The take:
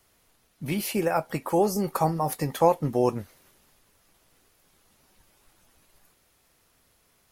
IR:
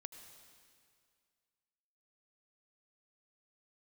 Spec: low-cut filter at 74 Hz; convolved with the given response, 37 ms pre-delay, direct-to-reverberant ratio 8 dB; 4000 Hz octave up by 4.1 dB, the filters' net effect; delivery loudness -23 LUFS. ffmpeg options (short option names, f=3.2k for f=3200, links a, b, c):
-filter_complex "[0:a]highpass=74,equalizer=f=4k:t=o:g=5.5,asplit=2[a][b];[1:a]atrim=start_sample=2205,adelay=37[c];[b][c]afir=irnorm=-1:irlink=0,volume=-3dB[d];[a][d]amix=inputs=2:normalize=0,volume=2.5dB"